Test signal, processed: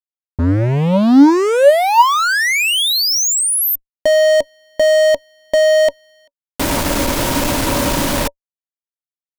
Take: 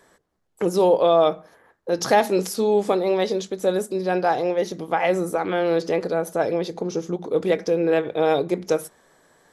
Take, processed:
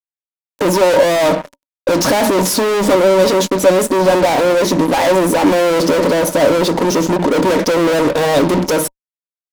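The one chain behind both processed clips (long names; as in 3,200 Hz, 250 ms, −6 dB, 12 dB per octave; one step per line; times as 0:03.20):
fuzz pedal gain 39 dB, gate −45 dBFS
hollow resonant body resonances 280/570/940 Hz, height 12 dB, ringing for 60 ms
level −1.5 dB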